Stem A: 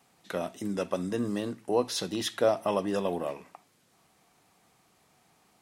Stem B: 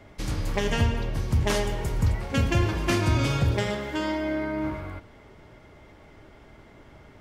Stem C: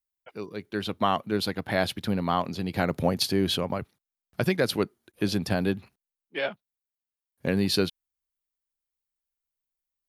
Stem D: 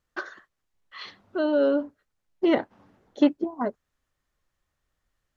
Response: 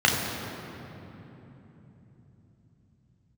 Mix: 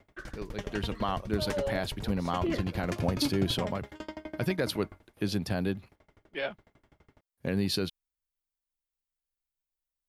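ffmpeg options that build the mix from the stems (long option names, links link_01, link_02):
-filter_complex "[0:a]adelay=300,volume=-19dB[link_01];[1:a]aeval=exprs='val(0)*pow(10,-31*if(lt(mod(12*n/s,1),2*abs(12)/1000),1-mod(12*n/s,1)/(2*abs(12)/1000),(mod(12*n/s,1)-2*abs(12)/1000)/(1-2*abs(12)/1000))/20)':channel_layout=same,volume=-5.5dB[link_02];[2:a]lowshelf=frequency=62:gain=11.5,alimiter=limit=-13.5dB:level=0:latency=1:release=76,volume=-4.5dB[link_03];[3:a]asplit=2[link_04][link_05];[link_05]afreqshift=-0.43[link_06];[link_04][link_06]amix=inputs=2:normalize=1,volume=-9.5dB,asplit=2[link_07][link_08];[link_08]apad=whole_len=260752[link_09];[link_01][link_09]sidechaincompress=threshold=-38dB:ratio=8:attack=16:release=675[link_10];[link_10][link_02][link_03][link_07]amix=inputs=4:normalize=0"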